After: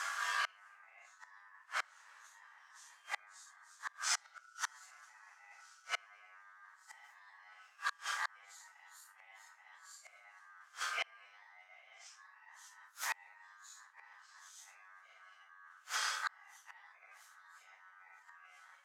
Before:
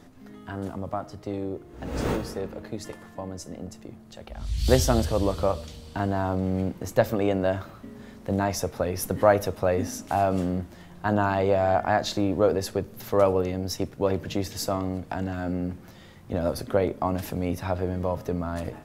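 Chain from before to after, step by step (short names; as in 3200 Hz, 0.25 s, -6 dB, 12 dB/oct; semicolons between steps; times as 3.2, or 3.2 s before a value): phase scrambler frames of 0.2 s; LPF 12000 Hz 12 dB/oct; reverse; compressor 16:1, threshold -35 dBFS, peak gain reduction 22 dB; reverse; flipped gate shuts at -34 dBFS, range -33 dB; ring modulator 1400 Hz; Bessel high-pass 960 Hz, order 8; bell 6800 Hz +11.5 dB 1.1 oct; core saturation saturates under 2600 Hz; gain +15 dB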